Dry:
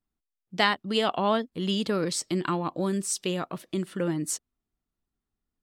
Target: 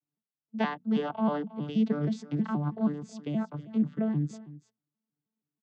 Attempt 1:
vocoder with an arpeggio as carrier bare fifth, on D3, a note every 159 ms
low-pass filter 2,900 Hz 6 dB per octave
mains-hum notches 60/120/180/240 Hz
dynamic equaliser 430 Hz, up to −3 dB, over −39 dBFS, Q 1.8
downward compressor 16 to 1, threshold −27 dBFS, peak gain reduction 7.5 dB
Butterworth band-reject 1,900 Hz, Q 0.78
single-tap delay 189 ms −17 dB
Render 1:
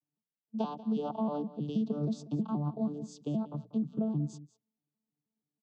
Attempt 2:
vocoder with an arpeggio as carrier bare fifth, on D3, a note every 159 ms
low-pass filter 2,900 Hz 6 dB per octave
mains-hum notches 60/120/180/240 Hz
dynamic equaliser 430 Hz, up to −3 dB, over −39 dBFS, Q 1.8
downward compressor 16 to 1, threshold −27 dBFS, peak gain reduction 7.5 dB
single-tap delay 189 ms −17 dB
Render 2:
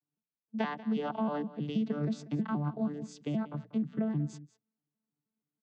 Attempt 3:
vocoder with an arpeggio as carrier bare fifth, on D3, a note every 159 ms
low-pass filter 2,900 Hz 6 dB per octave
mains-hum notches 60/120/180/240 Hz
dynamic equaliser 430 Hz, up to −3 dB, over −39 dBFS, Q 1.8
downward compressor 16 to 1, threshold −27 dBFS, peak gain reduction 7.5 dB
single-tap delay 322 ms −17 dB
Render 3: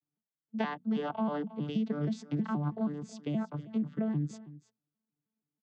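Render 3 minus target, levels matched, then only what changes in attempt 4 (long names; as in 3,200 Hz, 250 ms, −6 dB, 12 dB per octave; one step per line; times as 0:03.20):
downward compressor: peak gain reduction +7.5 dB
remove: downward compressor 16 to 1, threshold −27 dBFS, peak gain reduction 7.5 dB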